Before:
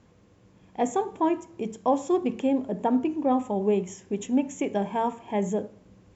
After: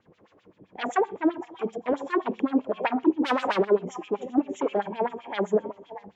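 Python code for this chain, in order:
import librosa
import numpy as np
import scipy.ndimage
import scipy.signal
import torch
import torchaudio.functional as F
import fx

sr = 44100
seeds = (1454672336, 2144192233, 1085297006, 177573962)

p1 = fx.tilt_eq(x, sr, slope=-1.5)
p2 = fx.echo_stepped(p1, sr, ms=313, hz=3200.0, octaves=-1.4, feedback_pct=70, wet_db=-9.5)
p3 = fx.fold_sine(p2, sr, drive_db=11, ceiling_db=-9.5)
p4 = p2 + (p3 * 10.0 ** (-7.0 / 20.0))
p5 = fx.leveller(p4, sr, passes=3, at=(3.23, 3.65))
p6 = fx.harmonic_tremolo(p5, sr, hz=1.6, depth_pct=70, crossover_hz=510.0)
p7 = fx.rev_schroeder(p6, sr, rt60_s=0.43, comb_ms=29, drr_db=17.0)
p8 = fx.filter_lfo_bandpass(p7, sr, shape='sine', hz=7.7, low_hz=350.0, high_hz=3900.0, q=2.1)
y = p8 * 10.0 ** (2.5 / 20.0)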